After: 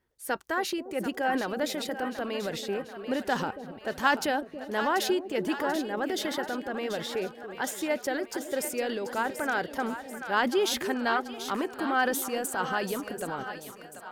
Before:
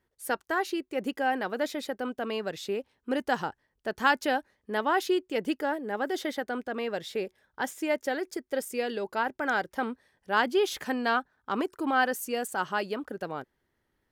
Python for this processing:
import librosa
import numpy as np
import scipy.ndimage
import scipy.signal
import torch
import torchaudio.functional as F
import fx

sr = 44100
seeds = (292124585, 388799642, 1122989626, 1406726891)

y = fx.transient(x, sr, attack_db=1, sustain_db=8)
y = fx.echo_split(y, sr, split_hz=600.0, low_ms=281, high_ms=737, feedback_pct=52, wet_db=-9.5)
y = y * librosa.db_to_amplitude(-1.5)